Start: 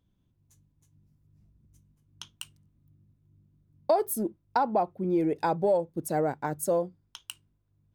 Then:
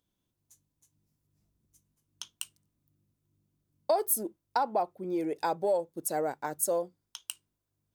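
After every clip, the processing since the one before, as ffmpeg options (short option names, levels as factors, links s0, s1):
-af "bass=f=250:g=-12,treble=f=4000:g=8,volume=0.75"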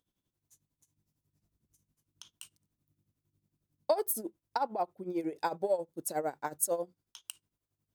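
-af "tremolo=f=11:d=0.76"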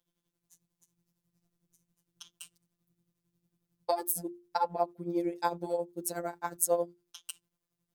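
-af "afftfilt=real='hypot(re,im)*cos(PI*b)':imag='0':win_size=1024:overlap=0.75,bandreject=f=50:t=h:w=6,bandreject=f=100:t=h:w=6,bandreject=f=150:t=h:w=6,bandreject=f=200:t=h:w=6,bandreject=f=250:t=h:w=6,bandreject=f=300:t=h:w=6,bandreject=f=350:t=h:w=6,volume=1.78"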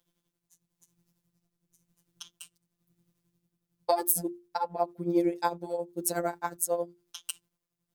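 -af "tremolo=f=0.97:d=0.59,volume=2"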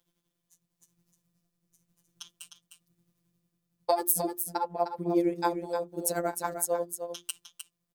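-af "aecho=1:1:306:0.398"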